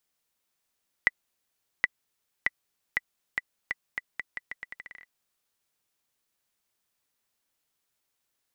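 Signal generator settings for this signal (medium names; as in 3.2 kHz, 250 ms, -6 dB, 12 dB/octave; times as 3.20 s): bouncing ball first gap 0.77 s, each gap 0.81, 1.98 kHz, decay 30 ms -7 dBFS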